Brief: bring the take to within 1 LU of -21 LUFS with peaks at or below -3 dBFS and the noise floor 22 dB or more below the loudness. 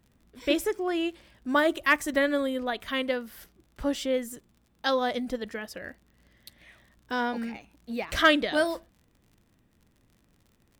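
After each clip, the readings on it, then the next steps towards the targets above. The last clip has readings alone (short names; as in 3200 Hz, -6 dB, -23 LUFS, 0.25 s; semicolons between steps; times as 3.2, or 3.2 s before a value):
ticks 46/s; loudness -28.0 LUFS; peak -9.0 dBFS; loudness target -21.0 LUFS
-> de-click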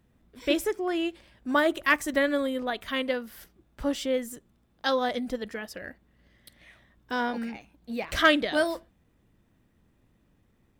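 ticks 1.0/s; loudness -28.0 LUFS; peak -7.0 dBFS; loudness target -21.0 LUFS
-> gain +7 dB; limiter -3 dBFS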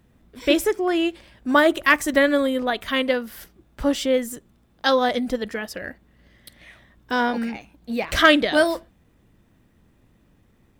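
loudness -21.5 LUFS; peak -3.0 dBFS; noise floor -60 dBFS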